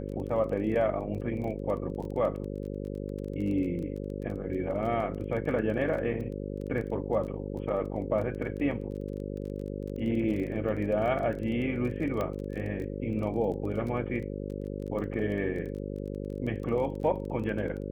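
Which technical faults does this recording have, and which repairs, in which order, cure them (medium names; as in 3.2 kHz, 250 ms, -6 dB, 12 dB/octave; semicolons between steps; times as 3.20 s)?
buzz 50 Hz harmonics 11 -36 dBFS
crackle 21 per s -37 dBFS
12.21 s: pop -19 dBFS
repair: de-click; de-hum 50 Hz, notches 11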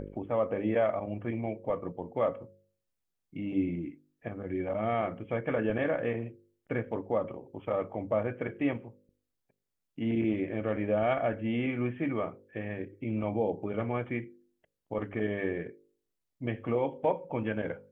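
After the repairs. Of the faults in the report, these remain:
nothing left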